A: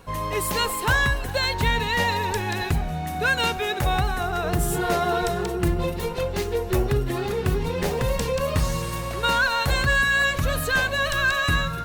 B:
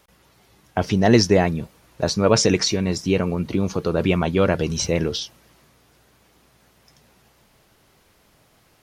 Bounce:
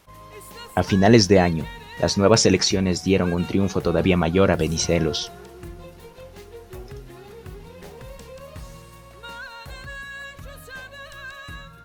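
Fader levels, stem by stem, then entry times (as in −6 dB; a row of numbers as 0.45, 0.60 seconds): −16.0, +1.0 decibels; 0.00, 0.00 seconds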